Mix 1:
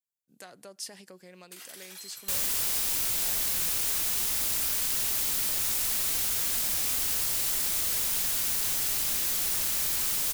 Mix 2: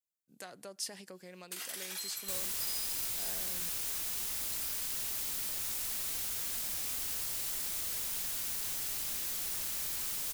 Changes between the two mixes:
first sound +4.5 dB
second sound −8.5 dB

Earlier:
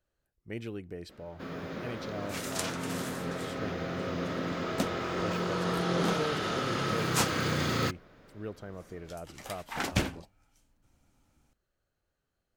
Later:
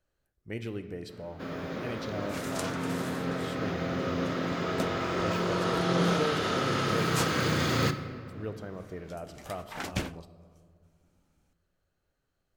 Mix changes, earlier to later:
second sound −4.0 dB
reverb: on, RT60 2.2 s

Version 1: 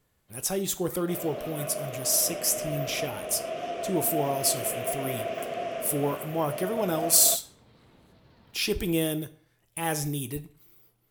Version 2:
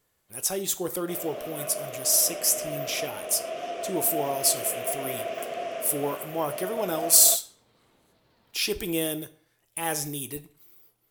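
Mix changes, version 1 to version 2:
first sound −4.5 dB
master: add bass and treble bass −8 dB, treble +3 dB

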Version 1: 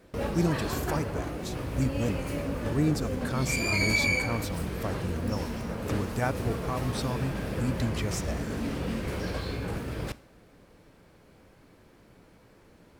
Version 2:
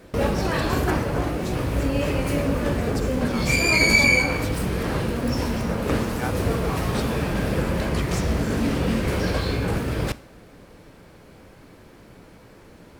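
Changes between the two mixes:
speech: add linear-phase brick-wall high-pass 670 Hz
background +9.0 dB

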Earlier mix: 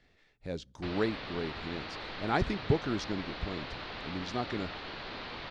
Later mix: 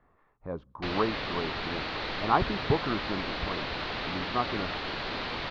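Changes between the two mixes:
speech: add low-pass with resonance 1,100 Hz, resonance Q 6.2
background +7.5 dB

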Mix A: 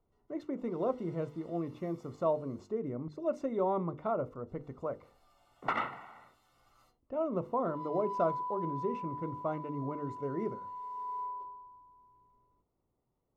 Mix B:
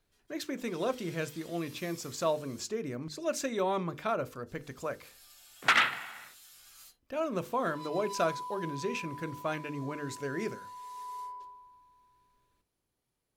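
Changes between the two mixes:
background −4.5 dB
master: remove Savitzky-Golay smoothing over 65 samples

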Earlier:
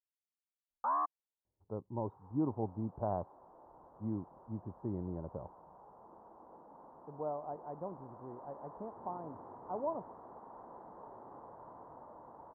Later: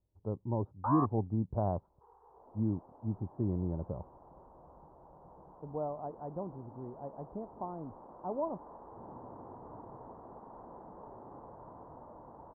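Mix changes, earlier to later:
speech: entry −1.45 s
master: add spectral tilt −2.5 dB per octave

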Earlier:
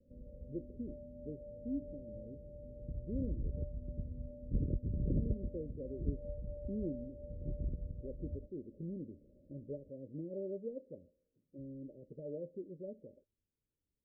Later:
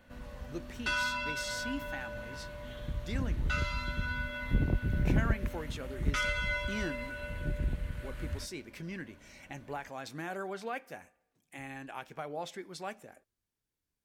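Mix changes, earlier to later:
background +5.5 dB
master: remove Chebyshev low-pass filter 600 Hz, order 10

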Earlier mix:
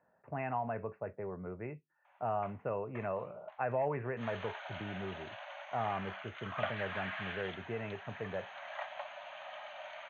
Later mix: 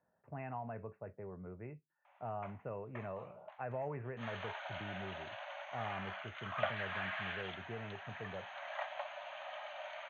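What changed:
speech −8.5 dB
master: add low-shelf EQ 220 Hz +7 dB

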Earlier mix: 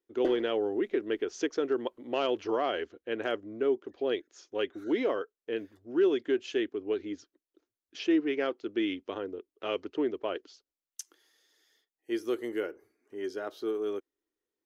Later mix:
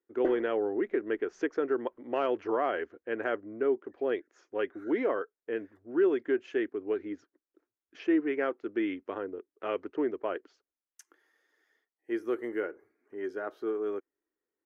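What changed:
speech: add low-shelf EQ 97 Hz −7 dB
master: add high shelf with overshoot 2,600 Hz −12 dB, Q 1.5

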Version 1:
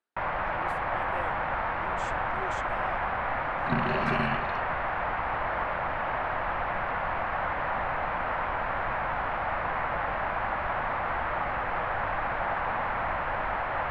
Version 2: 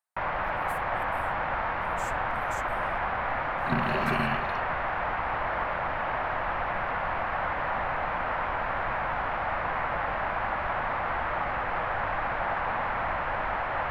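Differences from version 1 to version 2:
speech: add first difference
master: remove high-frequency loss of the air 63 metres

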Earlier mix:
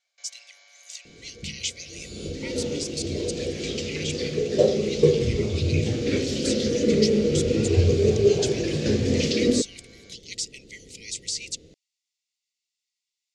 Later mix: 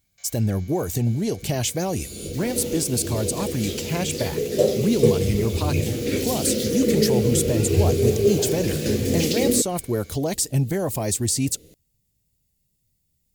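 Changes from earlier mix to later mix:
speech: remove linear-phase brick-wall high-pass 1,900 Hz
master: remove low-pass filter 6,200 Hz 24 dB per octave

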